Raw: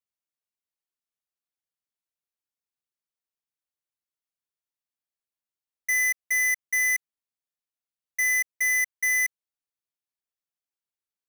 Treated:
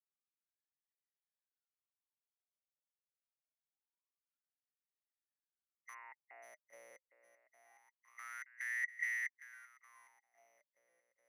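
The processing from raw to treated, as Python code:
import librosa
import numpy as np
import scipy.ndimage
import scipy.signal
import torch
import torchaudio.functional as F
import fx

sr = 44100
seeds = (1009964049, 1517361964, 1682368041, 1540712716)

p1 = fx.brickwall_bandpass(x, sr, low_hz=250.0, high_hz=2900.0, at=(5.93, 6.42), fade=0.02)
p2 = fx.spec_gate(p1, sr, threshold_db=-10, keep='weak')
p3 = p2 + fx.echo_swing(p2, sr, ms=1348, ratio=1.5, feedback_pct=42, wet_db=-12.0, dry=0)
p4 = fx.wah_lfo(p3, sr, hz=0.25, low_hz=530.0, high_hz=1900.0, q=13.0)
y = p4 * librosa.db_to_amplitude(12.0)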